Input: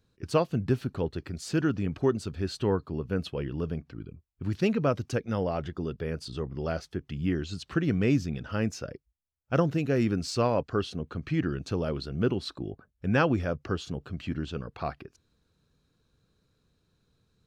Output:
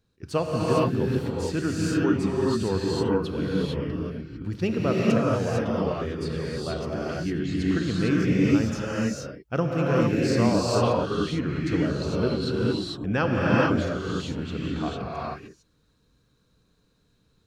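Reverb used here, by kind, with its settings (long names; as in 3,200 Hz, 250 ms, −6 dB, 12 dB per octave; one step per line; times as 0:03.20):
reverb whose tail is shaped and stops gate 480 ms rising, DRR −5.5 dB
level −1.5 dB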